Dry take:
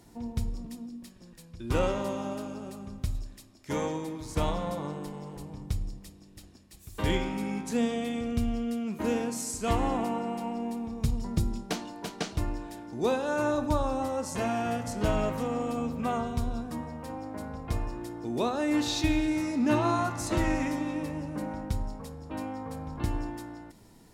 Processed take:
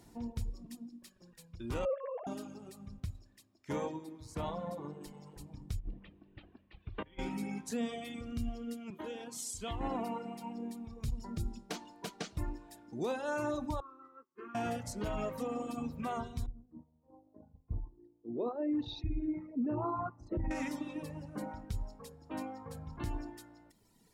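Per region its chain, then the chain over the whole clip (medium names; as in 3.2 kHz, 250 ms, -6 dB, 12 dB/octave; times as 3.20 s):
1.85–2.27 s: formants replaced by sine waves + tilt EQ -4.5 dB/octave
3.00–5.01 s: high-pass 66 Hz + treble shelf 2.7 kHz -7 dB
5.79–7.19 s: steep low-pass 3.2 kHz + compressor with a negative ratio -34 dBFS, ratio -0.5
8.90–9.81 s: peaking EQ 3.3 kHz +12 dB 0.36 oct + compression 5:1, threshold -32 dBFS + three bands expanded up and down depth 40%
13.80–14.55 s: gate -33 dBFS, range -21 dB + two resonant band-passes 680 Hz, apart 1.7 oct
16.46–20.51 s: resonances exaggerated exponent 2 + expander -29 dBFS + distance through air 290 m
whole clip: reverb removal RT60 2 s; peak limiter -24.5 dBFS; trim -3 dB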